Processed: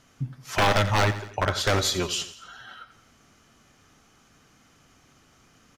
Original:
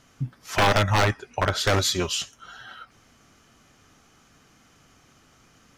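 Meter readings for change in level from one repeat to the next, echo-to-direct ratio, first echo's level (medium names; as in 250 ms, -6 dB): -5.5 dB, -12.5 dB, -14.0 dB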